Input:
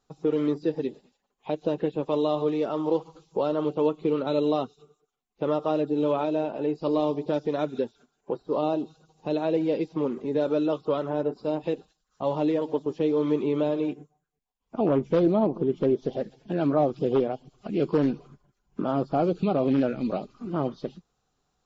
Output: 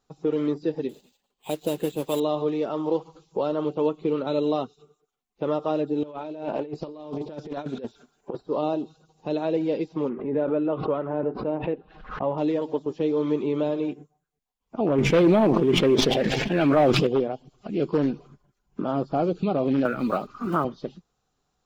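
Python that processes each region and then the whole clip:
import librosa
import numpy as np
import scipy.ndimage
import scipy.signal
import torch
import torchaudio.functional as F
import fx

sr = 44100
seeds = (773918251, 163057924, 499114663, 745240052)

y = fx.chain(x, sr, fx.high_shelf_res(hz=2400.0, db=7.0, q=1.5),
    fx.mod_noise(seeds[0], snr_db=19),
    fx.resample_bad(factor=4, down='filtered', up='hold'), at=(0.89, 2.2))
y = fx.chain(y, sr, fx.over_compress(threshold_db=-31.0, ratio=-0.5),
    fx.doppler_dist(depth_ms=0.15), at=(6.03, 8.41))
y = fx.chain(y, sr, fx.lowpass(hz=2400.0, slope=24),
    fx.pre_swell(db_per_s=83.0), at=(10.09, 12.38))
y = fx.chain(y, sr, fx.peak_eq(hz=2200.0, db=12.5, octaves=1.2),
    fx.leveller(passes=1),
    fx.sustainer(db_per_s=20.0), at=(14.98, 17.07))
y = fx.chain(y, sr, fx.block_float(bits=7),
    fx.peak_eq(hz=1300.0, db=14.0, octaves=0.91),
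    fx.band_squash(depth_pct=70), at=(19.85, 20.65))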